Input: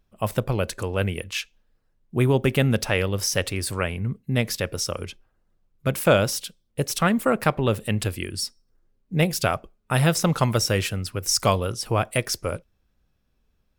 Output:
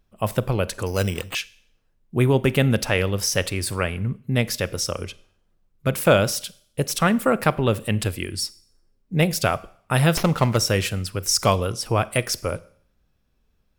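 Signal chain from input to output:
four-comb reverb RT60 0.6 s, combs from 33 ms, DRR 19.5 dB
0:00.86–0:01.35: bad sample-rate conversion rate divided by 8×, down none, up hold
0:10.17–0:10.57: windowed peak hold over 5 samples
level +1.5 dB

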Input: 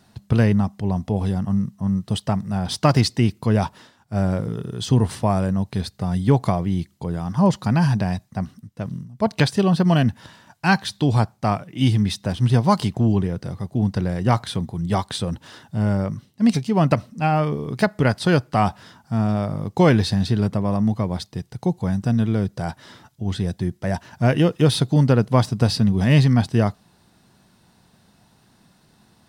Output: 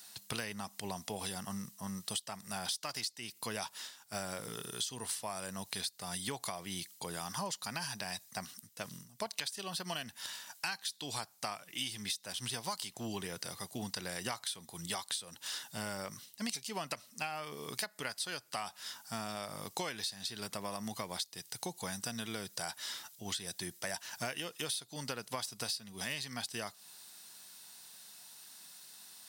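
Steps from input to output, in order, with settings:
first difference
downward compressor 16 to 1, threshold −47 dBFS, peak gain reduction 24.5 dB
level +12 dB

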